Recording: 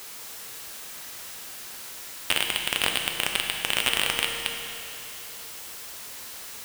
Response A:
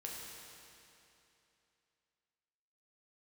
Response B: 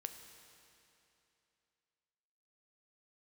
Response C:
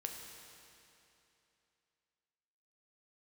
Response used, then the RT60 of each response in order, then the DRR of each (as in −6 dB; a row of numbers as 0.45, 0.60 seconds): C; 2.9, 2.9, 2.9 seconds; −3.0, 6.5, 2.0 decibels